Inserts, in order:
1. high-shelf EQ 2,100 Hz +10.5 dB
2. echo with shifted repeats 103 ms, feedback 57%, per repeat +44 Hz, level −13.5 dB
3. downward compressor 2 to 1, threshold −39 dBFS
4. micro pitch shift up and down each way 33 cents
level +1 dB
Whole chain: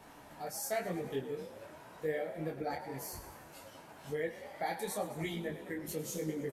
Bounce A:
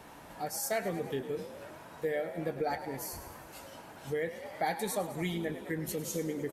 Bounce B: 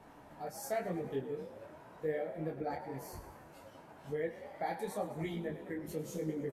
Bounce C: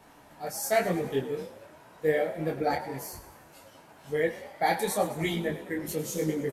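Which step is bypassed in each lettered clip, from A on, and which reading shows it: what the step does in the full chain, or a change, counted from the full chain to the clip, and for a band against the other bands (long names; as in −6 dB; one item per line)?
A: 4, change in integrated loudness +3.5 LU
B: 1, 8 kHz band −7.5 dB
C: 3, average gain reduction 5.0 dB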